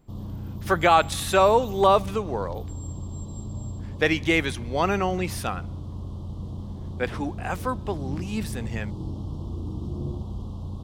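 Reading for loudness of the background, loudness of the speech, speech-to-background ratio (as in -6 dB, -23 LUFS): -35.5 LUFS, -24.5 LUFS, 11.0 dB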